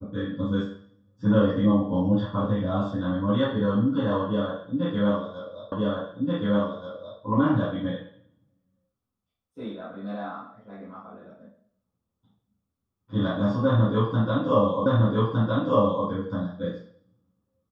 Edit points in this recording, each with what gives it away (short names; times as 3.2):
5.72 repeat of the last 1.48 s
14.86 repeat of the last 1.21 s